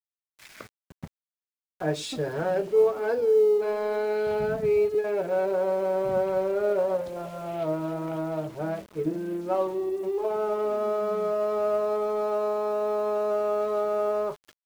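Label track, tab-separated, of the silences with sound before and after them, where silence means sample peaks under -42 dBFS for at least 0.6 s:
1.070000	1.800000	silence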